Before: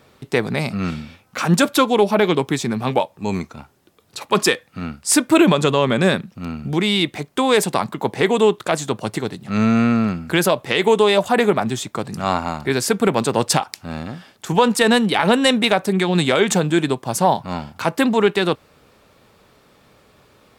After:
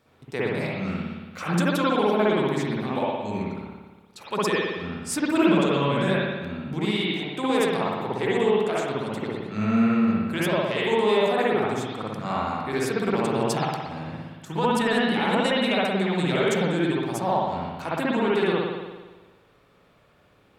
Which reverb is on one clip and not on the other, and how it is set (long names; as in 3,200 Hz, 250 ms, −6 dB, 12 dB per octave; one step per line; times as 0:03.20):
spring reverb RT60 1.3 s, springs 57 ms, chirp 65 ms, DRR −7 dB
level −13.5 dB